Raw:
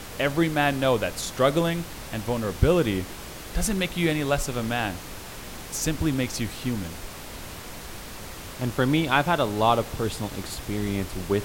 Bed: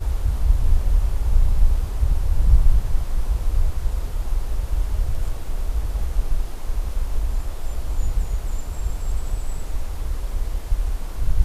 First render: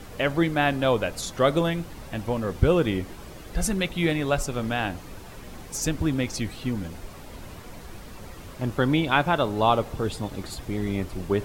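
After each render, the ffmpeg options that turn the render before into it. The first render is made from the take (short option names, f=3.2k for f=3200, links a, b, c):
-af "afftdn=nr=9:nf=-39"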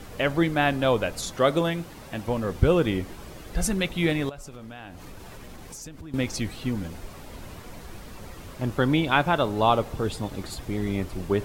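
-filter_complex "[0:a]asettb=1/sr,asplit=3[a][b][c];[a]atrim=end=1.364[d];[b]atrim=start=1.36:end=2.28,asetpts=PTS-STARTPTS,afade=t=in:d=0.004:c=qsin,afade=t=out:st=0.916:d=0.004:c=qsin,lowshelf=f=71:g=-11.5[e];[c]atrim=start=2.276[f];[d][e]acrossfade=d=0.004:c1=hsin:c2=qsin[g];[g][f]acrossfade=d=0.004:c1=qsin:c2=hsin,asettb=1/sr,asplit=3[h][i][j];[h]atrim=end=4.294[k];[i]atrim=start=4.29:end=6.14,asetpts=PTS-STARTPTS,afade=t=in:d=0.004:c=qsin,afade=t=out:st=1.846:d=0.004:c=qsin,acompressor=threshold=-37dB:ratio=8:attack=3.2:release=140:knee=1:detection=peak[l];[j]atrim=start=6.136[m];[k][l]acrossfade=d=0.004:c1=hsin:c2=qsin[n];[n][m]acrossfade=d=0.004:c1=qsin:c2=hsin"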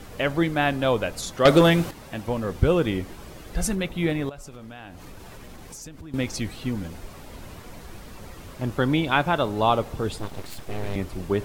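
-filter_complex "[0:a]asettb=1/sr,asplit=3[a][b][c];[a]atrim=end=1.454[d];[b]atrim=start=1.45:end=1.91,asetpts=PTS-STARTPTS,afade=t=in:d=0.004:c=qsin,afade=t=out:st=0.456:d=0.004:c=qsin,aeval=exprs='0.398*sin(PI/2*2*val(0)/0.398)':c=same[e];[c]atrim=start=1.906[f];[d][e]acrossfade=d=0.004:c1=hsin:c2=qsin[g];[g][f]acrossfade=d=0.004:c1=qsin:c2=hsin,asettb=1/sr,asplit=3[h][i][j];[h]atrim=end=3.754[k];[i]atrim=start=3.75:end=4.31,asetpts=PTS-STARTPTS,afade=t=in:d=0.004:c=qsin,afade=t=out:st=0.556:d=0.004:c=qsin,equalizer=f=5.9k:w=0.32:g=-5.5[l];[j]atrim=start=4.306[m];[k][l]acrossfade=d=0.004:c1=hsin:c2=qsin[n];[n][m]acrossfade=d=0.004:c1=qsin:c2=hsin,asettb=1/sr,asplit=3[o][p][q];[o]atrim=end=10.184[r];[p]atrim=start=10.18:end=10.96,asetpts=PTS-STARTPTS,afade=t=in:d=0.004:c=qsin,afade=t=out:st=0.776:d=0.004:c=qsin,aeval=exprs='abs(val(0))':c=same[s];[q]atrim=start=10.956[t];[r][s]acrossfade=d=0.004:c1=hsin:c2=qsin[u];[u][t]acrossfade=d=0.004:c1=qsin:c2=hsin"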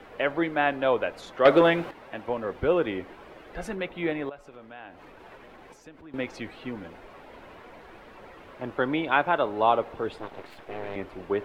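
-filter_complex "[0:a]acrossover=split=300 3000:gain=0.158 1 0.0794[a][b][c];[a][b][c]amix=inputs=3:normalize=0,bandreject=f=1.2k:w=29"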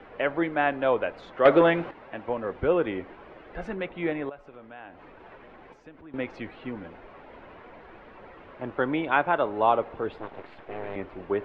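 -af "lowpass=2.8k"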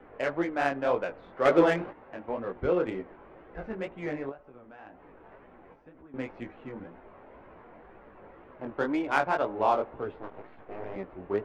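-af "flanger=delay=15.5:depth=7.2:speed=2,adynamicsmooth=sensitivity=3:basefreq=2k"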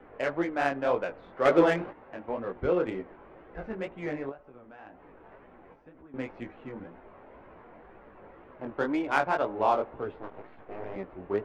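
-af anull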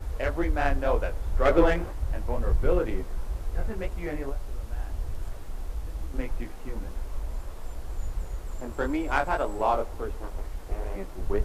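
-filter_complex "[1:a]volume=-10dB[a];[0:a][a]amix=inputs=2:normalize=0"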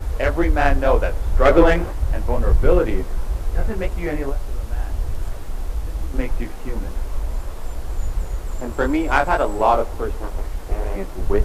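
-af "volume=8.5dB,alimiter=limit=-2dB:level=0:latency=1"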